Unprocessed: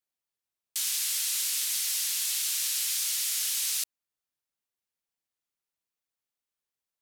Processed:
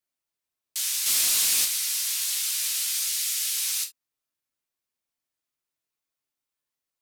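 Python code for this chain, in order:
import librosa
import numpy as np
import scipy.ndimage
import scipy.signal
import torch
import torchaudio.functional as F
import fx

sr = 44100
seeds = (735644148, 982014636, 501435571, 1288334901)

y = fx.leveller(x, sr, passes=2, at=(1.06, 1.65))
y = fx.highpass(y, sr, hz=1200.0, slope=12, at=(3.05, 3.57))
y = fx.rev_gated(y, sr, seeds[0], gate_ms=90, shape='falling', drr_db=1.5)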